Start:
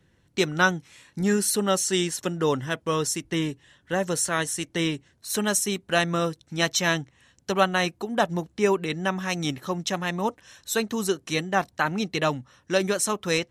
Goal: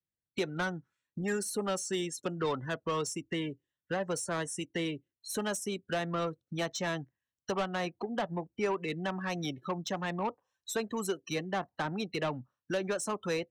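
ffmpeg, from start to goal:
-filter_complex "[0:a]afftdn=nr=36:nf=-34,acrossover=split=520|1300[s0][s1][s2];[s0]acompressor=threshold=0.0141:ratio=4[s3];[s1]acompressor=threshold=0.0355:ratio=4[s4];[s2]acompressor=threshold=0.0141:ratio=4[s5];[s3][s4][s5]amix=inputs=3:normalize=0,acrossover=split=380[s6][s7];[s7]asoftclip=type=tanh:threshold=0.0376[s8];[s6][s8]amix=inputs=2:normalize=0"

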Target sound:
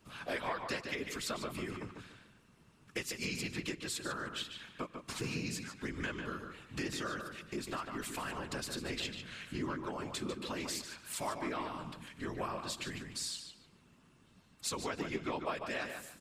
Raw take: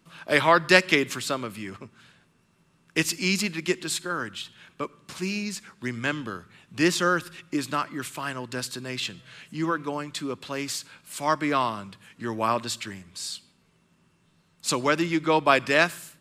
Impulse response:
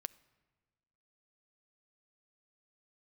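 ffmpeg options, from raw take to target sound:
-filter_complex "[0:a]acompressor=threshold=0.0178:ratio=6,afftfilt=real='hypot(re,im)*cos(2*PI*random(0))':imag='hypot(re,im)*sin(2*PI*random(1))':win_size=512:overlap=0.75,asplit=2[s0][s1];[s1]adelay=147,lowpass=f=4600:p=1,volume=0.501,asplit=2[s2][s3];[s3]adelay=147,lowpass=f=4600:p=1,volume=0.26,asplit=2[s4][s5];[s5]adelay=147,lowpass=f=4600:p=1,volume=0.26[s6];[s0][s2][s4][s6]amix=inputs=4:normalize=0,volume=1.68"

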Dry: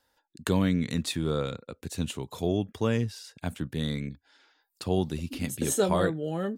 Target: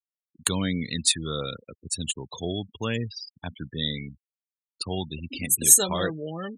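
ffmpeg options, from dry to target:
-af "aphaser=in_gain=1:out_gain=1:delay=1.1:decay=0.25:speed=1.3:type=sinusoidal,afftfilt=real='re*gte(hypot(re,im),0.0178)':imag='im*gte(hypot(re,im),0.0178)':win_size=1024:overlap=0.75,crystalizer=i=9.5:c=0,volume=0.562"

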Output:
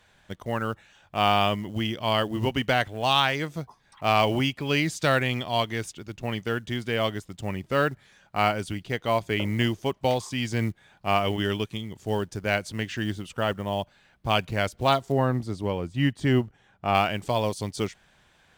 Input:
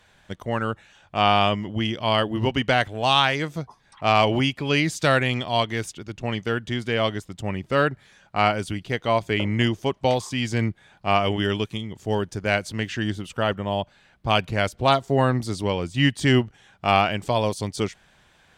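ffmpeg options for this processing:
-filter_complex "[0:a]acrusher=bits=7:mode=log:mix=0:aa=0.000001,asettb=1/sr,asplit=3[s0][s1][s2];[s0]atrim=end=15.124[s3];[s1]atrim=start=15.12:end=16.95,asetpts=PTS-STARTPTS,afade=t=in:d=0.004:c=qsin,afade=t=out:st=1.826:d=0.004:c=qsin,highshelf=f=2300:g=-11[s4];[s2]atrim=start=16.946[s5];[s3][s4]acrossfade=d=0.004:c1=hsin:c2=qsin[s6];[s6][s5]acrossfade=d=0.004:c1=qsin:c2=hsin,volume=0.708"

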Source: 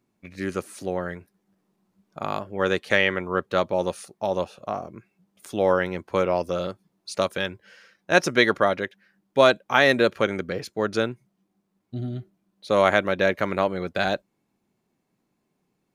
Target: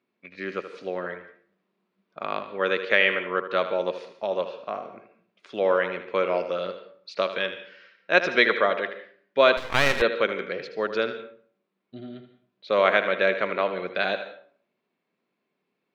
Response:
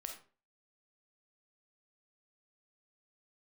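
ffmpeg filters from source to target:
-filter_complex "[0:a]highpass=310,equalizer=f=310:t=q:w=4:g=-5,equalizer=f=820:t=q:w=4:g=-7,equalizer=f=2400:t=q:w=4:g=3,lowpass=f=4100:w=0.5412,lowpass=f=4100:w=1.3066,asplit=2[s0][s1];[1:a]atrim=start_sample=2205,asetrate=31752,aresample=44100,adelay=78[s2];[s1][s2]afir=irnorm=-1:irlink=0,volume=0.398[s3];[s0][s3]amix=inputs=2:normalize=0,asettb=1/sr,asplit=3[s4][s5][s6];[s4]atrim=end=9.574[s7];[s5]atrim=start=9.57:end=10.02,asetpts=PTS-STARTPTS,afade=t=in:d=0.004:c=qsin,afade=t=out:st=0.446:d=0.004:c=qsin,aeval=exprs='max(val(0),0)':c=same[s8];[s6]atrim=start=10.016[s9];[s7][s8]acrossfade=d=0.004:c1=hsin:c2=qsin[s10];[s10][s9]acrossfade=d=0.004:c1=qsin:c2=hsin"

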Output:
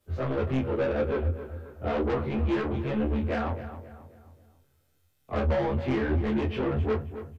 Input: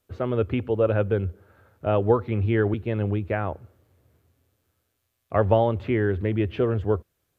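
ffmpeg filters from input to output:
-filter_complex "[0:a]afftfilt=real='re':imag='-im':win_size=2048:overlap=0.75,lowshelf=f=81:g=8,acrossover=split=430|3000[s0][s1][s2];[s1]acompressor=threshold=0.0398:ratio=6[s3];[s0][s3][s2]amix=inputs=3:normalize=0,asoftclip=type=tanh:threshold=0.0316,flanger=delay=7:depth=6.3:regen=-15:speed=1.7:shape=triangular,asplit=2[s4][s5];[s5]adelay=27,volume=0.266[s6];[s4][s6]amix=inputs=2:normalize=0,asplit=2[s7][s8];[s8]adelay=268,lowpass=f=2400:p=1,volume=0.266,asplit=2[s9][s10];[s10]adelay=268,lowpass=f=2400:p=1,volume=0.42,asplit=2[s11][s12];[s12]adelay=268,lowpass=f=2400:p=1,volume=0.42,asplit=2[s13][s14];[s14]adelay=268,lowpass=f=2400:p=1,volume=0.42[s15];[s7][s9][s11][s13][s15]amix=inputs=5:normalize=0,volume=2.82"

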